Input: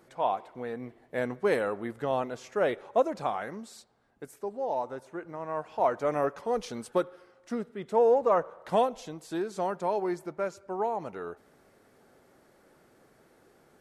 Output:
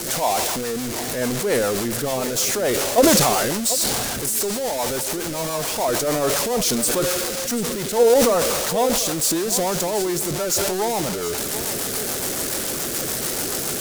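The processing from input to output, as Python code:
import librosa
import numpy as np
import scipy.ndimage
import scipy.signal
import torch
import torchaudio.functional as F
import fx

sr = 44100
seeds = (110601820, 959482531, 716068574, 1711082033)

p1 = x + 0.5 * 10.0 ** (-29.0 / 20.0) * np.sign(x)
p2 = fx.bass_treble(p1, sr, bass_db=0, treble_db=14)
p3 = fx.level_steps(p2, sr, step_db=19)
p4 = p2 + (p3 * 10.0 ** (0.5 / 20.0))
p5 = fx.rotary(p4, sr, hz=7.0)
p6 = p5 + fx.echo_single(p5, sr, ms=737, db=-13.5, dry=0)
p7 = fx.sustainer(p6, sr, db_per_s=22.0)
y = p7 * 10.0 ** (2.5 / 20.0)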